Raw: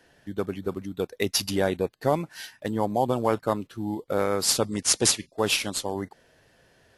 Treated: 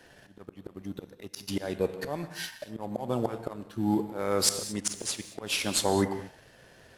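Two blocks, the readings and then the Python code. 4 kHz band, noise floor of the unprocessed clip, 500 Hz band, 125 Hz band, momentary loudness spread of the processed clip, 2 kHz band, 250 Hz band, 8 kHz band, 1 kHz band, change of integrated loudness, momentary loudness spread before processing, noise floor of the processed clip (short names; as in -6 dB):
-5.0 dB, -62 dBFS, -5.5 dB, -4.0 dB, 18 LU, -5.0 dB, -2.5 dB, -5.5 dB, -6.5 dB, -4.5 dB, 10 LU, -57 dBFS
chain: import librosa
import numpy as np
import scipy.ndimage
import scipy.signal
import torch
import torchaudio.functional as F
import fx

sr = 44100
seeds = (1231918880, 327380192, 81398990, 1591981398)

y = fx.auto_swell(x, sr, attack_ms=752.0)
y = fx.rev_gated(y, sr, seeds[0], gate_ms=250, shape='flat', drr_db=9.0)
y = fx.leveller(y, sr, passes=1)
y = y * 10.0 ** (5.0 / 20.0)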